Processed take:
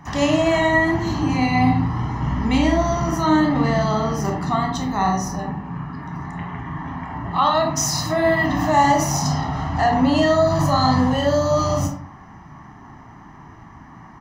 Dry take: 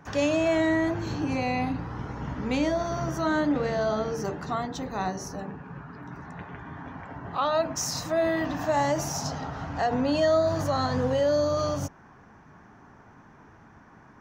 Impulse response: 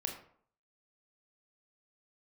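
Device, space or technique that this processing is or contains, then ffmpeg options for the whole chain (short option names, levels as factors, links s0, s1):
microphone above a desk: -filter_complex "[0:a]aecho=1:1:1:0.7[s0];[1:a]atrim=start_sample=2205[s1];[s0][s1]afir=irnorm=-1:irlink=0,volume=2.11"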